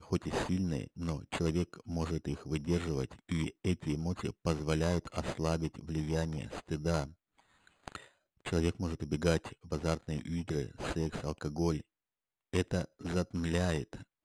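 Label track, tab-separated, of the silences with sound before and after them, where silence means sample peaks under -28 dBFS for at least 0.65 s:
7.040000	7.880000	silence
11.770000	12.540000	silence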